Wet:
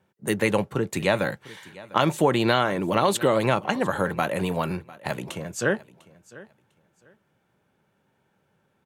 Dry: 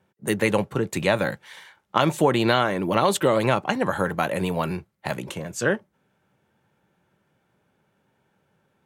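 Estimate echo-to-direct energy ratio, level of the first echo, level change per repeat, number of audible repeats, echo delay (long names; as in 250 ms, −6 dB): −20.5 dB, −20.5 dB, −13.0 dB, 2, 700 ms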